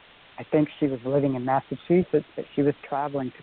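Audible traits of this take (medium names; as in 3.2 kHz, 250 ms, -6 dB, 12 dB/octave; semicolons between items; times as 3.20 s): random-step tremolo; a quantiser's noise floor 8-bit, dither triangular; µ-law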